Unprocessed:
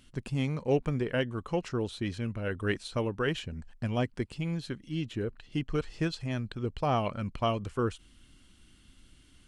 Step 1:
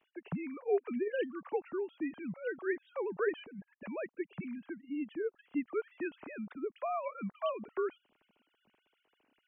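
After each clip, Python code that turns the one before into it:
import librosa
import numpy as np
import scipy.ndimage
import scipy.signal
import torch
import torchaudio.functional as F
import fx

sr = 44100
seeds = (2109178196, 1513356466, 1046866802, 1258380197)

y = fx.sine_speech(x, sr)
y = scipy.signal.sosfilt(scipy.signal.butter(4, 2800.0, 'lowpass', fs=sr, output='sos'), y)
y = F.gain(torch.from_numpy(y), -5.5).numpy()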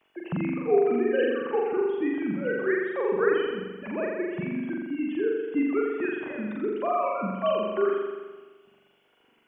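y = fx.room_flutter(x, sr, wall_m=7.3, rt60_s=1.3)
y = F.gain(torch.from_numpy(y), 6.5).numpy()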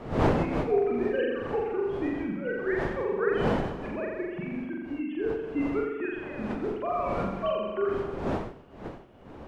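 y = fx.dmg_wind(x, sr, seeds[0], corner_hz=540.0, level_db=-31.0)
y = F.gain(torch.from_numpy(y), -3.5).numpy()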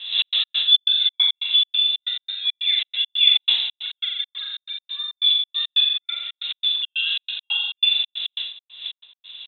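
y = fx.small_body(x, sr, hz=(450.0, 1100.0), ring_ms=25, db=13)
y = fx.freq_invert(y, sr, carrier_hz=3900)
y = fx.step_gate(y, sr, bpm=138, pattern='xx.x.xx.', floor_db=-60.0, edge_ms=4.5)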